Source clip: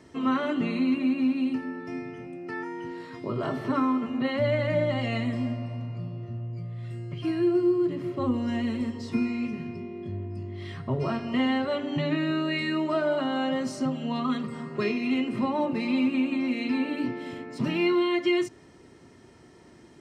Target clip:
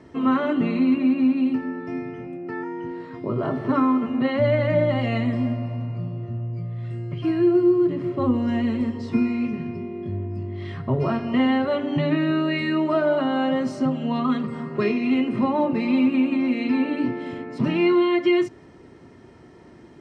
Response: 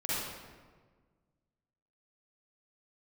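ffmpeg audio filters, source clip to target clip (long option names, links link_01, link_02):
-af "asetnsamples=nb_out_samples=441:pad=0,asendcmd='2.37 lowpass f 1100;3.69 lowpass f 2100',lowpass=frequency=1800:poles=1,volume=5.5dB"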